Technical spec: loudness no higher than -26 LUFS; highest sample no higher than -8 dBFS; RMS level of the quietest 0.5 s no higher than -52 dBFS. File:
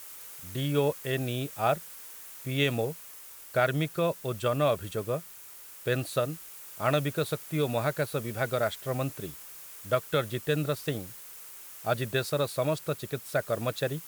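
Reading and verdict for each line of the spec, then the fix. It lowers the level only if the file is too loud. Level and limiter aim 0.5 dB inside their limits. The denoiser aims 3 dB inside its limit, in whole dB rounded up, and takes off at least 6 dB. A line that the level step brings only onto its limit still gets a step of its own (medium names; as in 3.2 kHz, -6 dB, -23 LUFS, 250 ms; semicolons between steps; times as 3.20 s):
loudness -30.5 LUFS: pass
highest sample -11.5 dBFS: pass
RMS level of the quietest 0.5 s -48 dBFS: fail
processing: noise reduction 7 dB, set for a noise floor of -48 dBFS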